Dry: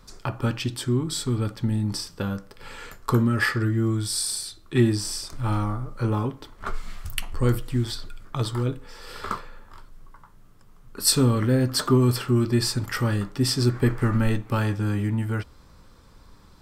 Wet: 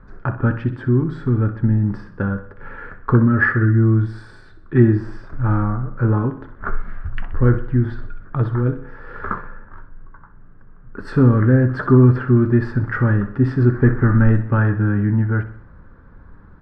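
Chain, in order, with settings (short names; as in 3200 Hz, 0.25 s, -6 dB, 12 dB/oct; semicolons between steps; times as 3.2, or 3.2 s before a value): synth low-pass 1600 Hz, resonance Q 5.6; tilt shelf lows +8 dB, about 790 Hz; feedback echo 63 ms, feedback 51%, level -13.5 dB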